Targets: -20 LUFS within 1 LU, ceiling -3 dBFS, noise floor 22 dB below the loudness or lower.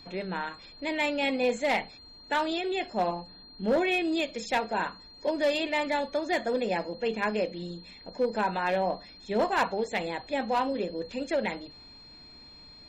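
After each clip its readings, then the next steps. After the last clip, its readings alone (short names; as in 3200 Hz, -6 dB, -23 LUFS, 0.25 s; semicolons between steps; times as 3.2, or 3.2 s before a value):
clipped 0.6%; flat tops at -19.5 dBFS; steady tone 4200 Hz; tone level -49 dBFS; loudness -29.5 LUFS; peak -19.5 dBFS; loudness target -20.0 LUFS
-> clip repair -19.5 dBFS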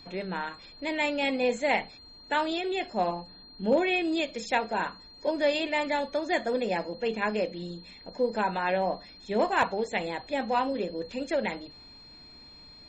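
clipped 0.0%; steady tone 4200 Hz; tone level -49 dBFS
-> notch 4200 Hz, Q 30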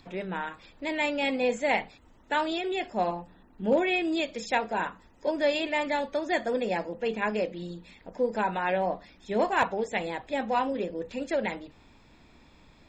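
steady tone none; loudness -29.0 LUFS; peak -10.5 dBFS; loudness target -20.0 LUFS
-> gain +9 dB; limiter -3 dBFS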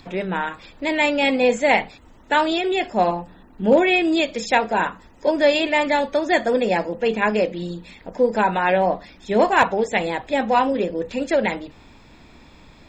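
loudness -20.5 LUFS; peak -3.0 dBFS; noise floor -48 dBFS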